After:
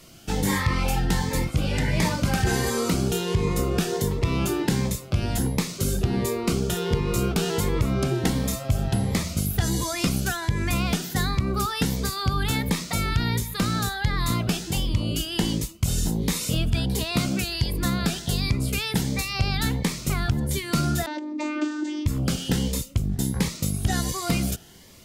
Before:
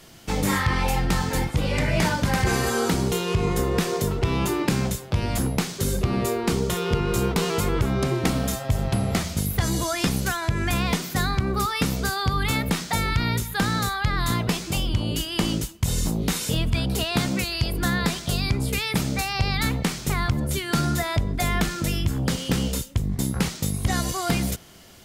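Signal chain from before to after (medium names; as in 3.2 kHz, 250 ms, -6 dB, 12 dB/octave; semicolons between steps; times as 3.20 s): 21.06–22.06 s: vocoder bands 16, saw 302 Hz; Shepard-style phaser rising 1.4 Hz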